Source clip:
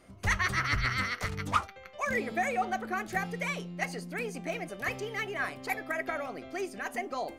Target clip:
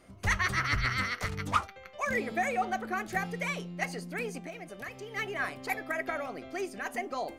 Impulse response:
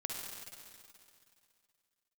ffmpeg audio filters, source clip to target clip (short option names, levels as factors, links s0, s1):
-filter_complex "[0:a]asplit=3[s0][s1][s2];[s0]afade=t=out:st=4.38:d=0.02[s3];[s1]acompressor=threshold=0.0112:ratio=6,afade=t=in:st=4.38:d=0.02,afade=t=out:st=5.15:d=0.02[s4];[s2]afade=t=in:st=5.15:d=0.02[s5];[s3][s4][s5]amix=inputs=3:normalize=0"